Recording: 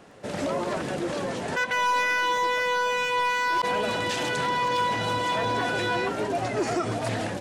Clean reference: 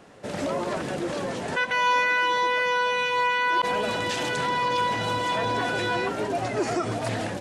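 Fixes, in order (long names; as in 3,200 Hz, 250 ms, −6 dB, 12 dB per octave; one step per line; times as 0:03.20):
clipped peaks rebuilt −19.5 dBFS
click removal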